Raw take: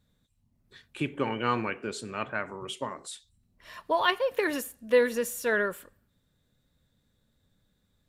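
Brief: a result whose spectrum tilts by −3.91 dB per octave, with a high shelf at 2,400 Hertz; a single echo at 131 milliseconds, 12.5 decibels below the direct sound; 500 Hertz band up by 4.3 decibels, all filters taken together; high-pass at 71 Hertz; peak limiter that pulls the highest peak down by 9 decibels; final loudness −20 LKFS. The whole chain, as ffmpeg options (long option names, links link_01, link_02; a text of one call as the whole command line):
ffmpeg -i in.wav -af "highpass=71,equalizer=frequency=500:width_type=o:gain=4.5,highshelf=frequency=2400:gain=4,alimiter=limit=-17dB:level=0:latency=1,aecho=1:1:131:0.237,volume=9dB" out.wav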